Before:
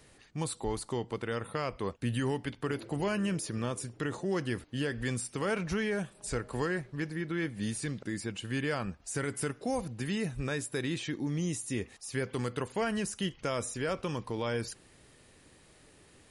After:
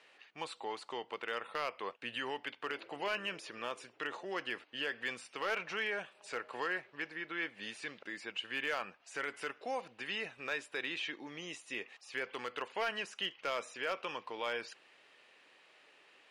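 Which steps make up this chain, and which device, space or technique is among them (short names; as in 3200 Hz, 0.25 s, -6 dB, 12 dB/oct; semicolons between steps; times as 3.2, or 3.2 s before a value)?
megaphone (BPF 650–3500 Hz; bell 2700 Hz +6.5 dB 0.51 oct; hard clip -26.5 dBFS, distortion -21 dB)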